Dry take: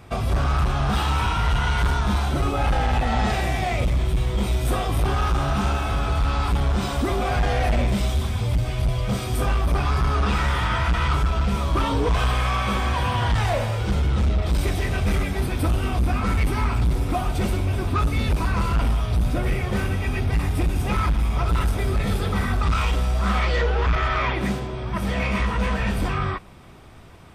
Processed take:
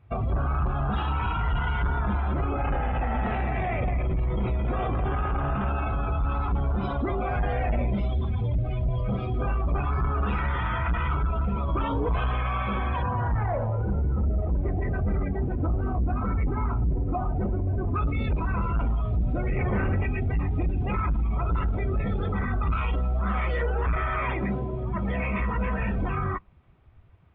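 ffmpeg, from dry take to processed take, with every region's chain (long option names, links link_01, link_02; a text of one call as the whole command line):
ffmpeg -i in.wav -filter_complex "[0:a]asettb=1/sr,asplit=3[link_01][link_02][link_03];[link_01]atrim=end=1.944[link_04];[link_02]atrim=start=1.94:end=5.69,asetpts=PTS-STARTPTS,afade=type=in:duration=0.004:curve=qsin,afade=type=out:start_time=3.746:duration=0.004:curve=qsin,lowpass=2900,acontrast=75,aecho=1:1:215:0.501,atrim=end_sample=165375[link_05];[link_03]atrim=start=5.686[link_06];[link_04][link_05]acrossfade=duration=0.004:curve1=hsin:curve2=qsin[link_07];[link_07][link_06]acrossfade=duration=0.004:curve1=qsin:curve2=hsin,asettb=1/sr,asplit=3[link_08][link_09][link_10];[link_08]atrim=end=13.024[link_11];[link_09]atrim=start=13.02:end=17.94,asetpts=PTS-STARTPTS,afade=type=in:duration=0.004:curve=qsin,afade=type=out:start_time=4.916:duration=0.004:curve=qsin,lowpass=2100,adynamicsmooth=sensitivity=5.5:basefreq=710[link_12];[link_10]atrim=start=17.936[link_13];[link_11][link_12]acrossfade=duration=0.004:curve1=hsin:curve2=qsin[link_14];[link_14][link_13]acrossfade=duration=0.004:curve1=qsin:curve2=hsin,asettb=1/sr,asplit=3[link_15][link_16][link_17];[link_15]atrim=end=19.564[link_18];[link_16]atrim=start=19.56:end=20.04,asetpts=PTS-STARTPTS,afade=type=in:duration=0.004:curve=qsin,afade=type=out:start_time=0.476:duration=0.004:curve=qsin,acrossover=split=2900[link_19][link_20];[link_20]acompressor=threshold=-53dB:ratio=4:attack=1:release=60[link_21];[link_19][link_21]amix=inputs=2:normalize=0,aeval=exprs='0.168*sin(PI/2*1.58*val(0)/0.168)':channel_layout=same[link_22];[link_17]atrim=start=20.036[link_23];[link_18][link_22]acrossfade=duration=0.004:curve1=hsin:curve2=qsin[link_24];[link_24][link_23]acrossfade=duration=0.004:curve1=qsin:curve2=hsin,afftdn=noise_reduction=18:noise_floor=-30,lowpass=frequency=3100:width=0.5412,lowpass=frequency=3100:width=1.3066,alimiter=limit=-20.5dB:level=0:latency=1:release=17" out.wav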